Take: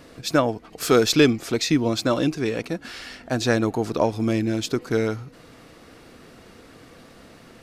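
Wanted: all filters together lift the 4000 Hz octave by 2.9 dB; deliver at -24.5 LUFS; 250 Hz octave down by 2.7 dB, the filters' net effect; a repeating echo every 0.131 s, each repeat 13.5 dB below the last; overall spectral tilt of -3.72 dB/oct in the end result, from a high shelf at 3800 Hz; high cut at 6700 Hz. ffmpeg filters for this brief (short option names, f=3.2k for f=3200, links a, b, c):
-af "lowpass=6.7k,equalizer=f=250:t=o:g=-3.5,highshelf=f=3.8k:g=-6,equalizer=f=4k:t=o:g=7.5,aecho=1:1:131|262:0.211|0.0444,volume=-1dB"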